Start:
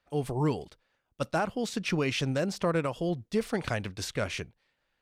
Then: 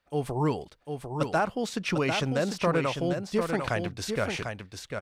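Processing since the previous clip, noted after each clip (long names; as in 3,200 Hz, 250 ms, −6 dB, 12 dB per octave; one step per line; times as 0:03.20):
dynamic equaliser 1,000 Hz, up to +4 dB, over −44 dBFS, Q 0.71
single-tap delay 748 ms −6 dB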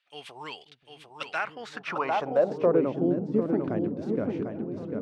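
echo whose low-pass opens from repeat to repeat 534 ms, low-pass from 200 Hz, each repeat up 1 octave, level −6 dB
band-pass filter sweep 3,000 Hz → 290 Hz, 0:01.16–0:03.00
level +8 dB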